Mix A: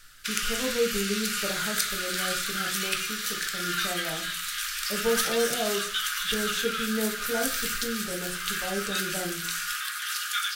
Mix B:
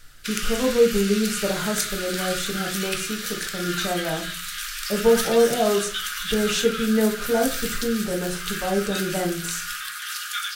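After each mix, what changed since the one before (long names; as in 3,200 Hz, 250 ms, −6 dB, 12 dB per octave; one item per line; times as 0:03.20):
speech +9.0 dB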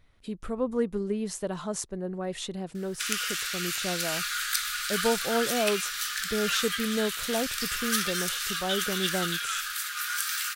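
background: entry +2.75 s
reverb: off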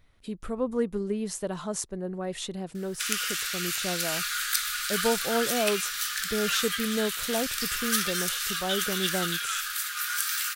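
master: add high-shelf EQ 10,000 Hz +4.5 dB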